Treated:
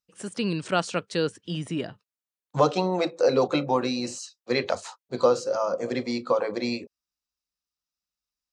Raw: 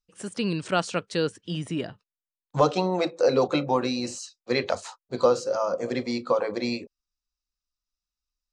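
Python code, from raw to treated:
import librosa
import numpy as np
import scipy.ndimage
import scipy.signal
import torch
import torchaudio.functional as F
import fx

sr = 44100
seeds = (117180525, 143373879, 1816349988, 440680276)

y = scipy.signal.sosfilt(scipy.signal.butter(2, 84.0, 'highpass', fs=sr, output='sos'), x)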